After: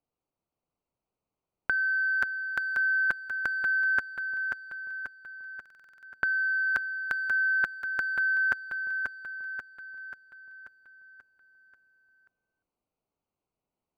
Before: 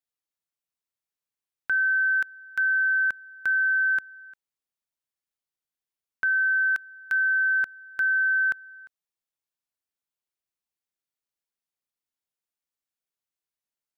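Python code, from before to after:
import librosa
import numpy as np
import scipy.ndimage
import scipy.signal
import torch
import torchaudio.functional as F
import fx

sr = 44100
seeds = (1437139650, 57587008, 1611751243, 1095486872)

y = fx.wiener(x, sr, points=25)
y = fx.high_shelf(y, sr, hz=2000.0, db=-3.0)
y = fx.over_compress(y, sr, threshold_db=-31.0, ratio=-0.5)
y = fx.echo_feedback(y, sr, ms=536, feedback_pct=53, wet_db=-5.5)
y = fx.buffer_glitch(y, sr, at_s=(5.61,), block=2048, repeats=8)
y = y * 10.0 ** (7.0 / 20.0)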